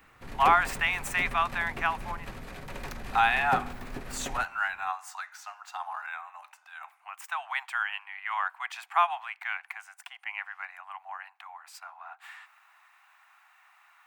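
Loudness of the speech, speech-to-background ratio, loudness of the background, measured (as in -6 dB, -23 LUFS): -29.5 LUFS, 11.0 dB, -40.5 LUFS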